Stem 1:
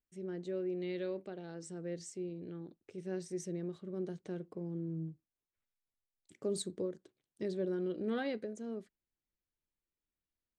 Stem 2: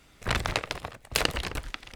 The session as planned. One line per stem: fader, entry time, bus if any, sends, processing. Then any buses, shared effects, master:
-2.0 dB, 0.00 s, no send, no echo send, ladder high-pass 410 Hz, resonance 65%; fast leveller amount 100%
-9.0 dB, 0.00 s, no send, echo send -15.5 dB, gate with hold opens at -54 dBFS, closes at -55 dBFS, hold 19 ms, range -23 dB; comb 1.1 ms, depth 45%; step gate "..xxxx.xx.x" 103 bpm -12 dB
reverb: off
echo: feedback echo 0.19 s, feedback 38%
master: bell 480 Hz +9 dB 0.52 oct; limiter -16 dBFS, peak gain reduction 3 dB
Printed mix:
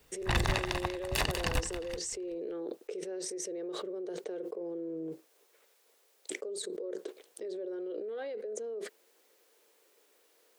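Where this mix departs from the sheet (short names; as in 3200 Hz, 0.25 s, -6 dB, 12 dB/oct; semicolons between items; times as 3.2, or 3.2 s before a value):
stem 2 -9.0 dB -> +1.5 dB; master: missing bell 480 Hz +9 dB 0.52 oct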